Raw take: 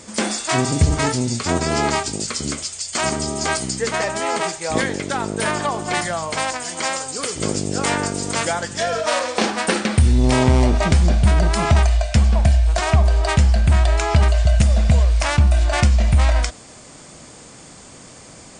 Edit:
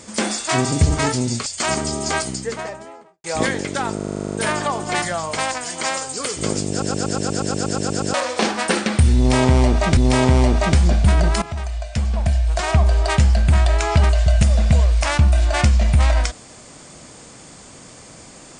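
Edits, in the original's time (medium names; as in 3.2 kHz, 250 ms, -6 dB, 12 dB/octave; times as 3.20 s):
1.46–2.81 s: delete
3.41–4.59 s: studio fade out
5.31 s: stutter 0.04 s, 10 plays
7.69 s: stutter in place 0.12 s, 12 plays
10.16–10.96 s: loop, 2 plays
11.61–13.08 s: fade in, from -16.5 dB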